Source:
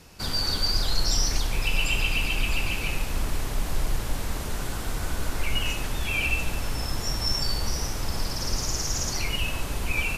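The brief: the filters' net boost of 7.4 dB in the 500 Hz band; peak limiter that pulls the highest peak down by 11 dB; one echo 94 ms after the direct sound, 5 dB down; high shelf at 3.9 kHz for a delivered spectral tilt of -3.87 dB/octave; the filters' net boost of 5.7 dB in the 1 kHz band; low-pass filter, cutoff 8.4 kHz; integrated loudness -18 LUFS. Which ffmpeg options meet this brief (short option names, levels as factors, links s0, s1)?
-af "lowpass=8400,equalizer=f=500:t=o:g=8,equalizer=f=1000:t=o:g=5,highshelf=f=3900:g=-5.5,alimiter=limit=0.0794:level=0:latency=1,aecho=1:1:94:0.562,volume=4.73"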